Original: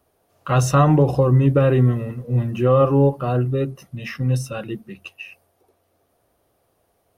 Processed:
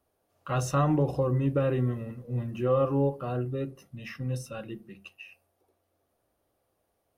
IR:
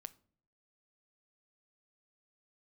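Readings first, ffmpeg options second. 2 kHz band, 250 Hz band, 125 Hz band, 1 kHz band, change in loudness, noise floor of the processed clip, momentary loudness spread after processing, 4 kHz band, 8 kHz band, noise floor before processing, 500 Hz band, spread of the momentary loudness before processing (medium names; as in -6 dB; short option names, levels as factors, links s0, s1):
-10.0 dB, -9.5 dB, -11.5 dB, -10.0 dB, -10.5 dB, -77 dBFS, 18 LU, -10.0 dB, -10.0 dB, -67 dBFS, -9.5 dB, 17 LU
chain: -filter_complex "[1:a]atrim=start_sample=2205,asetrate=83790,aresample=44100[s0];[0:a][s0]afir=irnorm=-1:irlink=0,volume=1.19"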